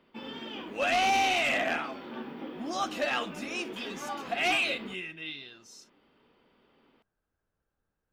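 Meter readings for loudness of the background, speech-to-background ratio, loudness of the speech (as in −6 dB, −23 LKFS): −41.0 LKFS, 12.0 dB, −29.0 LKFS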